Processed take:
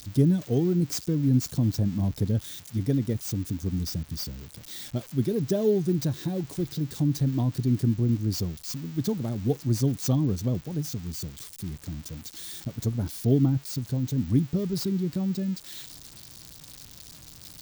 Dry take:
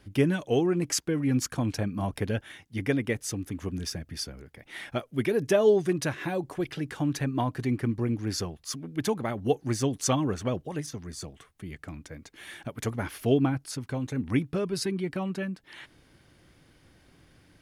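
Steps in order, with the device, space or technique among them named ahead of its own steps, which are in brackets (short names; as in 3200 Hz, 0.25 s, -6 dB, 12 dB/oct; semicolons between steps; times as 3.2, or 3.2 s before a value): EQ curve 170 Hz 0 dB, 2700 Hz -29 dB, 3800 Hz -8 dB; budget class-D amplifier (switching dead time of 0.052 ms; switching spikes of -34 dBFS); gain +6.5 dB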